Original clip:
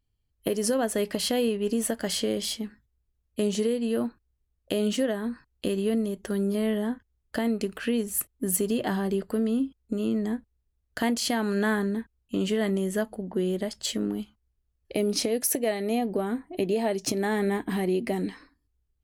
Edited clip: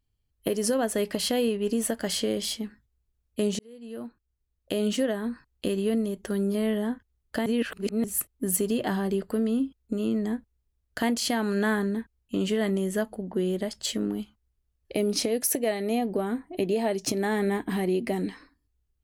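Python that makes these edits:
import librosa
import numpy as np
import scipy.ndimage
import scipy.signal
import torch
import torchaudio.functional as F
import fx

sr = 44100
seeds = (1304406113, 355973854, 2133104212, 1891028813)

y = fx.edit(x, sr, fx.fade_in_span(start_s=3.59, length_s=1.31),
    fx.reverse_span(start_s=7.46, length_s=0.58), tone=tone)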